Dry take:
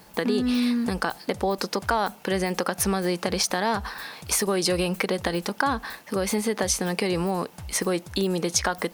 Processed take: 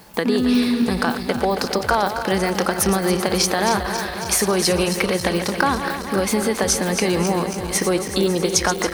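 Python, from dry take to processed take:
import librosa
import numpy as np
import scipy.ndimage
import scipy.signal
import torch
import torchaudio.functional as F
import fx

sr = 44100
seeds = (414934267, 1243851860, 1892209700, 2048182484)

y = fx.reverse_delay_fb(x, sr, ms=137, feedback_pct=82, wet_db=-9.5)
y = F.gain(torch.from_numpy(y), 4.5).numpy()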